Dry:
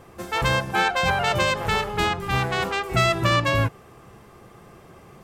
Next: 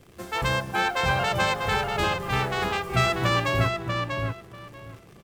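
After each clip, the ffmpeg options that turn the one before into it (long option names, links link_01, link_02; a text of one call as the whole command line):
ffmpeg -i in.wav -filter_complex "[0:a]acrossover=split=540|1900[link_01][link_02][link_03];[link_02]acrusher=bits=7:mix=0:aa=0.000001[link_04];[link_01][link_04][link_03]amix=inputs=3:normalize=0,asplit=2[link_05][link_06];[link_06]adelay=642,lowpass=frequency=3900:poles=1,volume=-4dB,asplit=2[link_07][link_08];[link_08]adelay=642,lowpass=frequency=3900:poles=1,volume=0.18,asplit=2[link_09][link_10];[link_10]adelay=642,lowpass=frequency=3900:poles=1,volume=0.18[link_11];[link_05][link_07][link_09][link_11]amix=inputs=4:normalize=0,volume=-3.5dB" out.wav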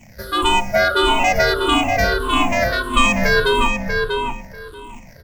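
ffmpeg -i in.wav -af "afftfilt=real='re*pow(10,21/40*sin(2*PI*(0.7*log(max(b,1)*sr/1024/100)/log(2)-(-1.6)*(pts-256)/sr)))':imag='im*pow(10,21/40*sin(2*PI*(0.7*log(max(b,1)*sr/1024/100)/log(2)-(-1.6)*(pts-256)/sr)))':win_size=1024:overlap=0.75,bandreject=frequency=53.98:width_type=h:width=4,bandreject=frequency=107.96:width_type=h:width=4,bandreject=frequency=161.94:width_type=h:width=4,bandreject=frequency=215.92:width_type=h:width=4,bandreject=frequency=269.9:width_type=h:width=4,bandreject=frequency=323.88:width_type=h:width=4,bandreject=frequency=377.86:width_type=h:width=4,bandreject=frequency=431.84:width_type=h:width=4,bandreject=frequency=485.82:width_type=h:width=4,bandreject=frequency=539.8:width_type=h:width=4,bandreject=frequency=593.78:width_type=h:width=4,bandreject=frequency=647.76:width_type=h:width=4,bandreject=frequency=701.74:width_type=h:width=4,bandreject=frequency=755.72:width_type=h:width=4,bandreject=frequency=809.7:width_type=h:width=4,bandreject=frequency=863.68:width_type=h:width=4,bandreject=frequency=917.66:width_type=h:width=4,bandreject=frequency=971.64:width_type=h:width=4,bandreject=frequency=1025.62:width_type=h:width=4,bandreject=frequency=1079.6:width_type=h:width=4,bandreject=frequency=1133.58:width_type=h:width=4,bandreject=frequency=1187.56:width_type=h:width=4,bandreject=frequency=1241.54:width_type=h:width=4,bandreject=frequency=1295.52:width_type=h:width=4,bandreject=frequency=1349.5:width_type=h:width=4,bandreject=frequency=1403.48:width_type=h:width=4,bandreject=frequency=1457.46:width_type=h:width=4,bandreject=frequency=1511.44:width_type=h:width=4,bandreject=frequency=1565.42:width_type=h:width=4,bandreject=frequency=1619.4:width_type=h:width=4,bandreject=frequency=1673.38:width_type=h:width=4,bandreject=frequency=1727.36:width_type=h:width=4,bandreject=frequency=1781.34:width_type=h:width=4,bandreject=frequency=1835.32:width_type=h:width=4,bandreject=frequency=1889.3:width_type=h:width=4,bandreject=frequency=1943.28:width_type=h:width=4,bandreject=frequency=1997.26:width_type=h:width=4,afreqshift=-140,volume=4.5dB" out.wav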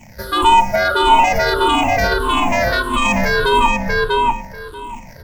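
ffmpeg -i in.wav -af "alimiter=limit=-11dB:level=0:latency=1:release=13,areverse,acompressor=mode=upward:threshold=-37dB:ratio=2.5,areverse,equalizer=frequency=910:width=7.6:gain=10.5,volume=3dB" out.wav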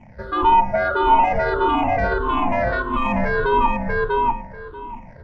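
ffmpeg -i in.wav -af "lowpass=1600,volume=-3dB" out.wav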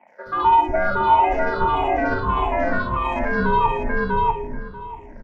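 ffmpeg -i in.wav -filter_complex "[0:a]acrossover=split=380|2700[link_01][link_02][link_03];[link_03]adelay=70[link_04];[link_01]adelay=260[link_05];[link_05][link_02][link_04]amix=inputs=3:normalize=0" out.wav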